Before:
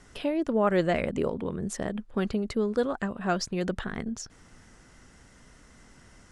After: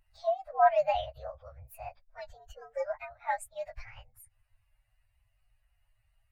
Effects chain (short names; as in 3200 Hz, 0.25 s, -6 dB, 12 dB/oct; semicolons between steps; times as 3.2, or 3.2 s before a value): inharmonic rescaling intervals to 116%; elliptic band-stop 110–620 Hz, stop band 40 dB; spectral expander 1.5:1; gain +5.5 dB